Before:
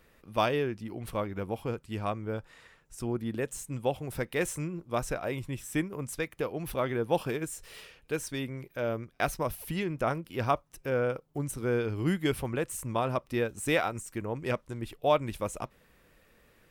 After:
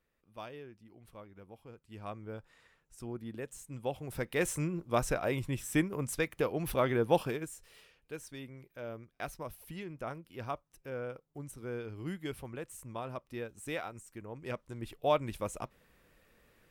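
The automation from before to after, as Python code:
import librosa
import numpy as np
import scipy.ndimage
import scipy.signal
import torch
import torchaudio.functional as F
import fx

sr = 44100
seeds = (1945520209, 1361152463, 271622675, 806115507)

y = fx.gain(x, sr, db=fx.line((1.71, -18.5), (2.14, -9.0), (3.62, -9.0), (4.63, 1.0), (7.11, 1.0), (7.71, -11.0), (14.28, -11.0), (14.91, -3.5)))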